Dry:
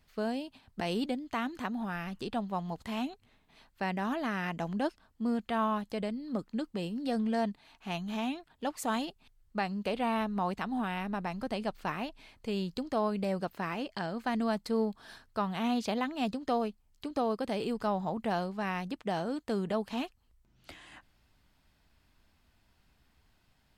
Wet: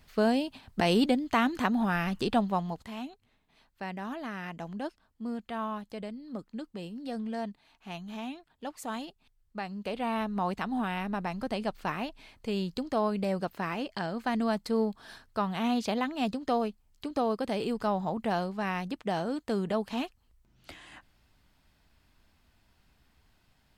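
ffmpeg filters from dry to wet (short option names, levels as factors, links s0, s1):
-af "volume=5.31,afade=t=out:st=2.36:d=0.54:silence=0.237137,afade=t=in:st=9.62:d=0.93:silence=0.473151"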